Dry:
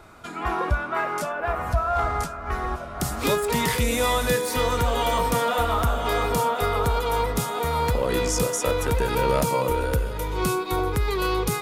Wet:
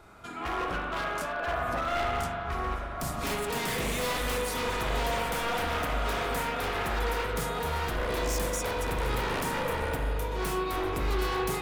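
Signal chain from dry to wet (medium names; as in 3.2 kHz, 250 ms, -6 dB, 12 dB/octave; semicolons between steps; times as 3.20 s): wavefolder -21.5 dBFS; spring tank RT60 2 s, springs 40 ms, chirp 50 ms, DRR 0 dB; trim -6 dB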